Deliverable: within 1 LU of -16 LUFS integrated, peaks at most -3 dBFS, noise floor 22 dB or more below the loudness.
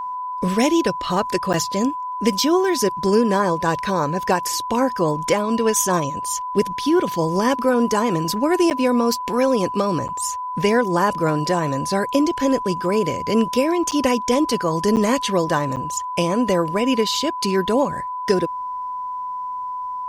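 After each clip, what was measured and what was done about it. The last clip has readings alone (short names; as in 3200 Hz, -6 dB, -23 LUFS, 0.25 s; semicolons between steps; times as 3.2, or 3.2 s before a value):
dropouts 6; longest dropout 8.9 ms; steady tone 1000 Hz; tone level -25 dBFS; loudness -20.5 LUFS; peak -4.5 dBFS; loudness target -16.0 LUFS
-> interpolate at 1.53/8.7/10.08/13.91/14.96/15.76, 8.9 ms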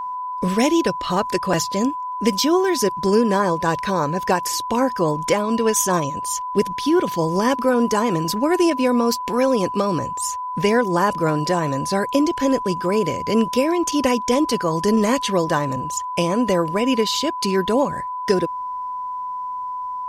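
dropouts 0; steady tone 1000 Hz; tone level -25 dBFS
-> notch 1000 Hz, Q 30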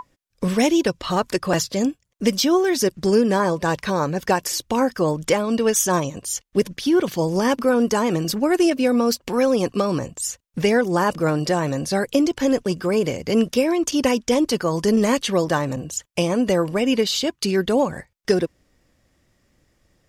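steady tone none; loudness -21.0 LUFS; peak -5.0 dBFS; loudness target -16.0 LUFS
-> gain +5 dB; limiter -3 dBFS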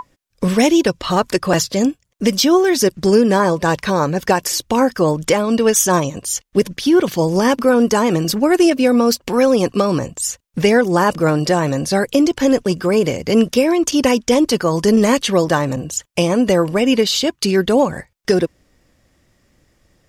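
loudness -16.0 LUFS; peak -3.0 dBFS; noise floor -63 dBFS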